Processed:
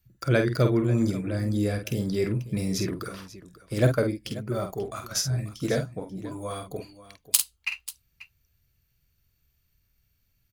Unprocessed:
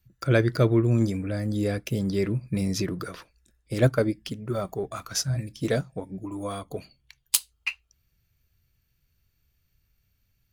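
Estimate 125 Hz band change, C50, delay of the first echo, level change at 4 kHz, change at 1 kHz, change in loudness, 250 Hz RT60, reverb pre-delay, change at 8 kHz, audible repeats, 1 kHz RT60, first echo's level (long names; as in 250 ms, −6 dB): −1.0 dB, no reverb audible, 48 ms, +0.5 dB, −0.5 dB, −0.5 dB, no reverb audible, no reverb audible, +1.5 dB, 2, no reverb audible, −6.5 dB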